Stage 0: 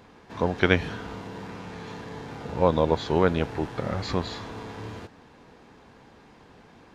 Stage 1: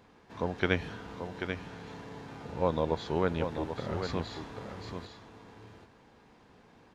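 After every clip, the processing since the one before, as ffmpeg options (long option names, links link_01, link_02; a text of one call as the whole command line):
ffmpeg -i in.wav -af "aecho=1:1:787:0.422,volume=-7.5dB" out.wav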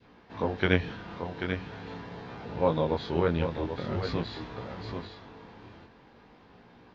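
ffmpeg -i in.wav -af "lowpass=frequency=5000:width=0.5412,lowpass=frequency=5000:width=1.3066,adynamicequalizer=threshold=0.00562:dfrequency=850:dqfactor=0.81:tfrequency=850:tqfactor=0.81:attack=5:release=100:ratio=0.375:range=2:mode=cutabove:tftype=bell,flanger=delay=16.5:depth=7.5:speed=0.44,volume=6.5dB" out.wav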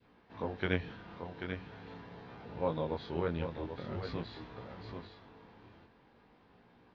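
ffmpeg -i in.wav -af "lowpass=5200,volume=-8dB" out.wav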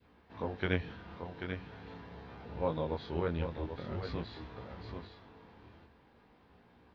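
ffmpeg -i in.wav -af "equalizer=frequency=71:width=6.6:gain=14.5" out.wav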